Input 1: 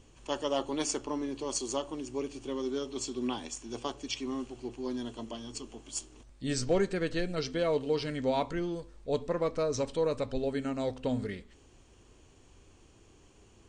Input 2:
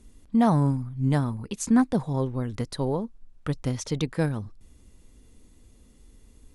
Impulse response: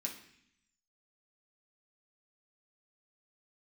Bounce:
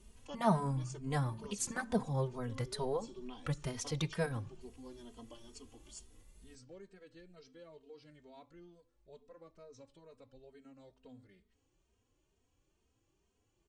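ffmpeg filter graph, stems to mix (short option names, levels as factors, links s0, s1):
-filter_complex "[0:a]acompressor=threshold=0.00447:ratio=1.5,volume=0.531,afade=t=out:st=5.93:d=0.49:silence=0.298538[s0];[1:a]equalizer=f=280:w=2.9:g=-13.5,volume=0.708,asplit=3[s1][s2][s3];[s2]volume=0.224[s4];[s3]apad=whole_len=603623[s5];[s0][s5]sidechaincompress=threshold=0.0112:ratio=8:attack=16:release=119[s6];[2:a]atrim=start_sample=2205[s7];[s4][s7]afir=irnorm=-1:irlink=0[s8];[s6][s1][s8]amix=inputs=3:normalize=0,asplit=2[s9][s10];[s10]adelay=2.9,afreqshift=2.2[s11];[s9][s11]amix=inputs=2:normalize=1"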